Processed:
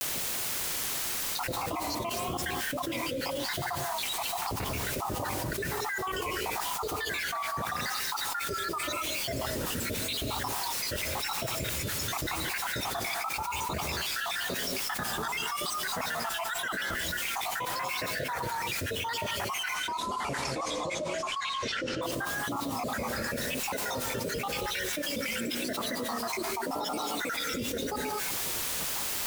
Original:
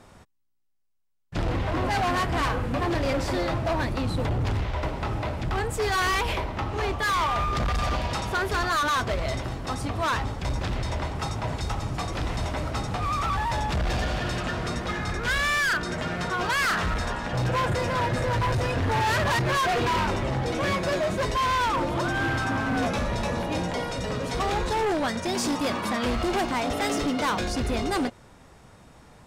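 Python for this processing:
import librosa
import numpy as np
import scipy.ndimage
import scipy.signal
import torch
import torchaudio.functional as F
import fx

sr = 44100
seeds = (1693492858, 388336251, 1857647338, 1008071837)

y = fx.spec_dropout(x, sr, seeds[0], share_pct=80)
y = fx.highpass(y, sr, hz=280.0, slope=6)
y = fx.quant_dither(y, sr, seeds[1], bits=8, dither='triangular')
y = fx.lowpass(y, sr, hz=fx.line((19.74, 11000.0), (22.01, 6100.0)), slope=24, at=(19.74, 22.01), fade=0.02)
y = fx.rev_gated(y, sr, seeds[2], gate_ms=260, shape='rising', drr_db=7.0)
y = fx.vibrato(y, sr, rate_hz=0.9, depth_cents=95.0)
y = fx.env_flatten(y, sr, amount_pct=100)
y = y * librosa.db_to_amplitude(-9.0)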